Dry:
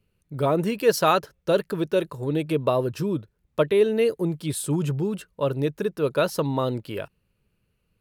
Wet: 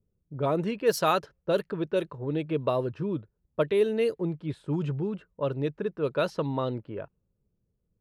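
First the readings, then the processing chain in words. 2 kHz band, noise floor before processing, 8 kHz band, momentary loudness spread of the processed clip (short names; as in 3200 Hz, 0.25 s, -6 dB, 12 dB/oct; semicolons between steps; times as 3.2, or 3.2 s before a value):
-5.0 dB, -73 dBFS, n/a, 10 LU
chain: low-pass opened by the level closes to 560 Hz, open at -15.5 dBFS; gain -4.5 dB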